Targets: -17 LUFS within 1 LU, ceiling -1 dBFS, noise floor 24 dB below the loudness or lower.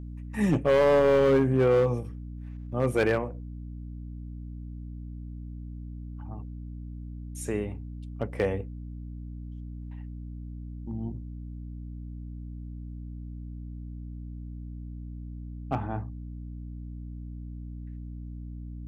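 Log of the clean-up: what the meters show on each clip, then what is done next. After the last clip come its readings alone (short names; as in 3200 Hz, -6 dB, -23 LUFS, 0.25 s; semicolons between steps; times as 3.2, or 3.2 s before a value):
clipped 0.8%; flat tops at -16.5 dBFS; hum 60 Hz; harmonics up to 300 Hz; hum level -36 dBFS; loudness -27.5 LUFS; peak -16.5 dBFS; loudness target -17.0 LUFS
-> clip repair -16.5 dBFS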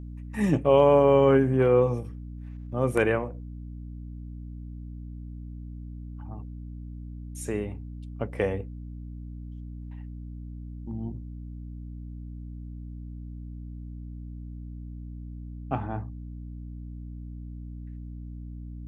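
clipped 0.0%; hum 60 Hz; harmonics up to 300 Hz; hum level -36 dBFS
-> notches 60/120/180/240/300 Hz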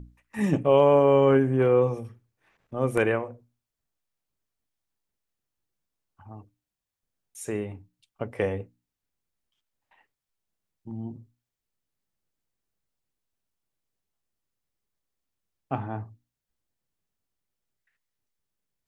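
hum none; loudness -23.5 LUFS; peak -8.0 dBFS; loudness target -17.0 LUFS
-> gain +6.5 dB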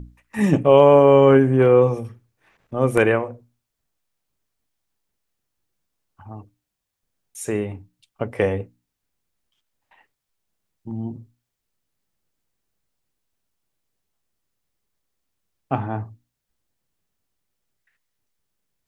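loudness -17.0 LUFS; peak -1.5 dBFS; noise floor -81 dBFS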